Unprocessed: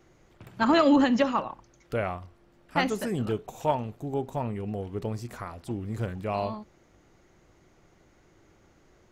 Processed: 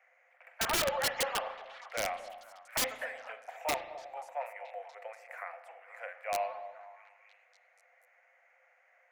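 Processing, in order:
Chebyshev high-pass with heavy ripple 500 Hz, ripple 9 dB
high shelf with overshoot 2,900 Hz −8 dB, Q 3
wrap-around overflow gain 24 dB
on a send: echo through a band-pass that steps 241 ms, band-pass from 650 Hz, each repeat 0.7 octaves, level −11.5 dB
on the sum: spring reverb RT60 1.2 s, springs 36 ms, chirp 65 ms, DRR 11.5 dB

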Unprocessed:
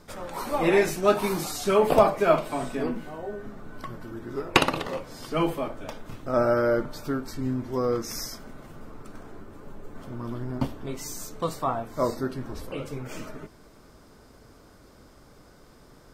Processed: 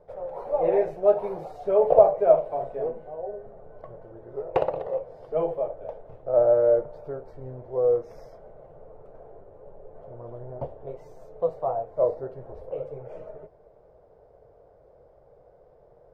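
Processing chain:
drawn EQ curve 150 Hz 0 dB, 260 Hz −14 dB, 490 Hz +14 dB, 710 Hz +11 dB, 1,200 Hz −8 dB, 1,800 Hz −9 dB, 7,500 Hz −28 dB
level −7.5 dB

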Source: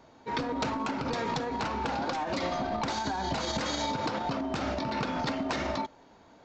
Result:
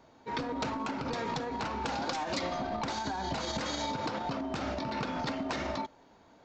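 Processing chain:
0:01.84–0:02.39: high-shelf EQ 4,600 Hz → 3,200 Hz +10 dB
level −3 dB

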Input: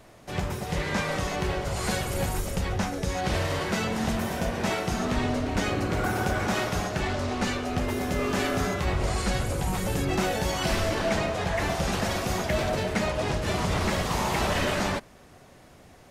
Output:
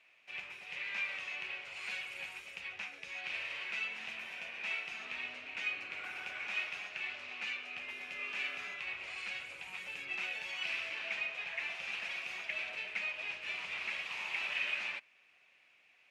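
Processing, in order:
resonant band-pass 2,500 Hz, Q 7.4
level +3.5 dB

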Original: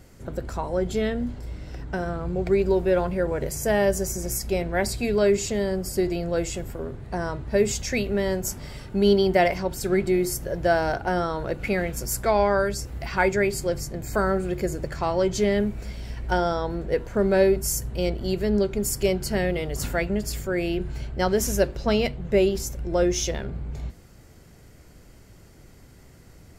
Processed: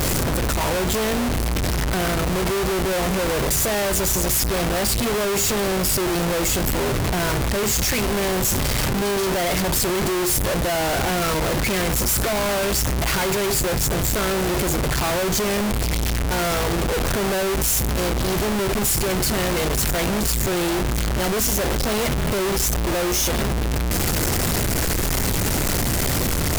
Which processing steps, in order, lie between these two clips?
sign of each sample alone
parametric band 13,000 Hz +3.5 dB 1.2 octaves
level +3.5 dB

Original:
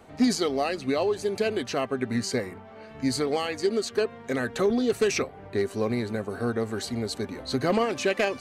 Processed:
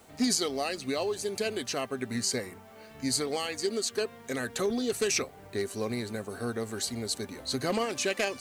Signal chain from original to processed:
parametric band 10,000 Hz +12.5 dB 2.3 octaves
background noise white −60 dBFS
level −6 dB

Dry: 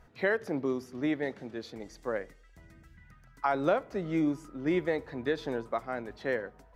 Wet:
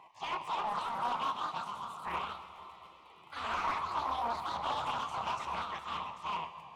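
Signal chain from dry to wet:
pitch shift by two crossfaded delay taps +8 semitones
Butterworth band-reject 1,400 Hz, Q 1.4
high-shelf EQ 3,700 Hz −6.5 dB
gate on every frequency bin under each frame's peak −15 dB weak
octave-band graphic EQ 125/250/500/1,000/2,000/4,000 Hz +9/−7/−9/+11/−7/−3 dB
mid-hump overdrive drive 22 dB, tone 1,200 Hz, clips at −23.5 dBFS
convolution reverb RT60 4.2 s, pre-delay 7 ms, DRR 9 dB
delay with pitch and tempo change per echo 298 ms, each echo +2 semitones, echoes 2
highs frequency-modulated by the lows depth 0.35 ms

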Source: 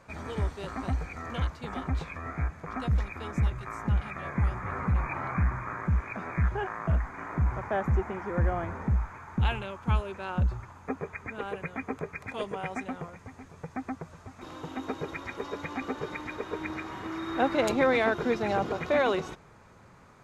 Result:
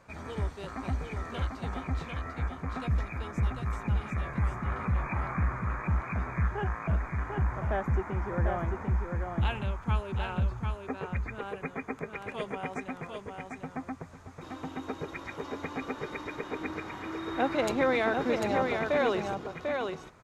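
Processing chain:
single-tap delay 746 ms −4.5 dB
level −2.5 dB

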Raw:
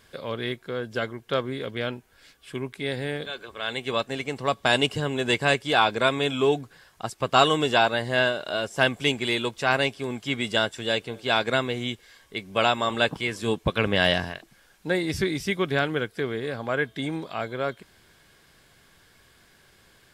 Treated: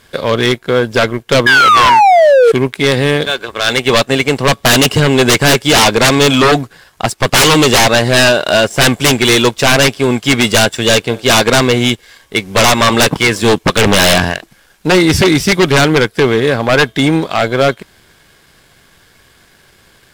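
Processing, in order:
sound drawn into the spectrogram fall, 0:01.46–0:02.52, 440–1,700 Hz −23 dBFS
sine wavefolder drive 18 dB, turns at −3.5 dBFS
power curve on the samples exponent 1.4

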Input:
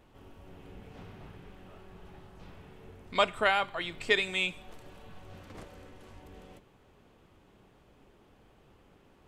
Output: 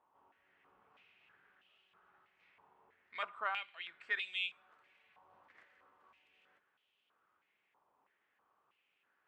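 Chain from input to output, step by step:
band-pass on a step sequencer 3.1 Hz 980–3,000 Hz
level −3 dB

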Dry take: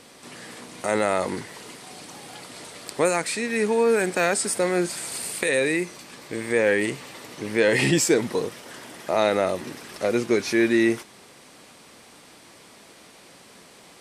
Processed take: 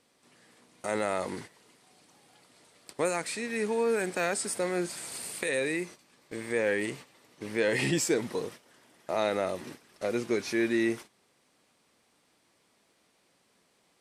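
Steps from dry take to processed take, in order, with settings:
noise gate −36 dBFS, range −12 dB
level −7.5 dB

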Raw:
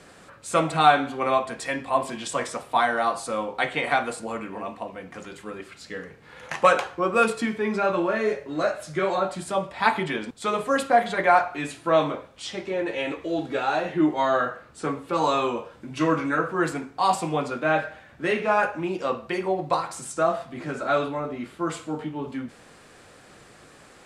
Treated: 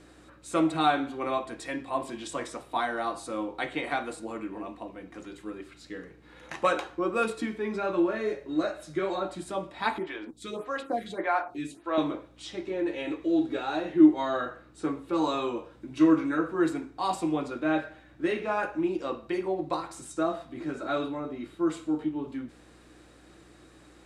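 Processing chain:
mains hum 60 Hz, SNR 27 dB
hollow resonant body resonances 320/3,800 Hz, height 14 dB, ringing for 65 ms
0:09.98–0:11.98: phaser with staggered stages 1.7 Hz
level −8 dB

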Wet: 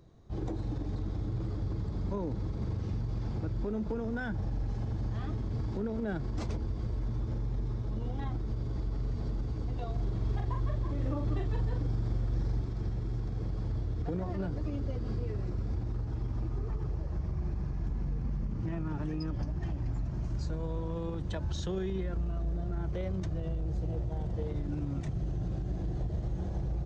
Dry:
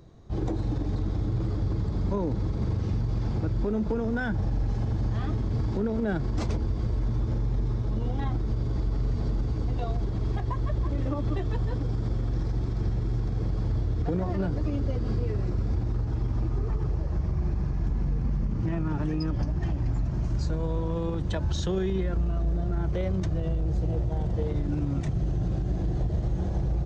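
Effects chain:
0:09.92–0:12.61: double-tracking delay 42 ms −4 dB
level −6.5 dB

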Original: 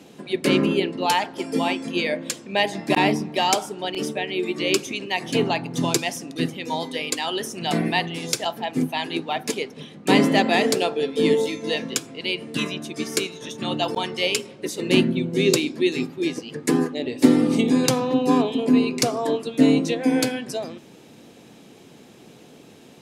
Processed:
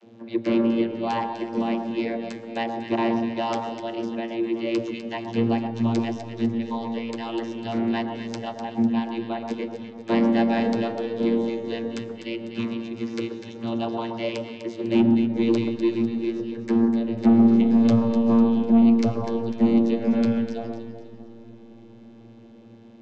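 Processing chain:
low-pass filter 6,300 Hz 24 dB per octave
channel vocoder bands 32, saw 115 Hz
soft clipping −11 dBFS, distortion −15 dB
delay that swaps between a low-pass and a high-pass 125 ms, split 1,400 Hz, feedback 63%, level −5 dB
on a send at −15.5 dB: convolution reverb RT60 3.9 s, pre-delay 70 ms

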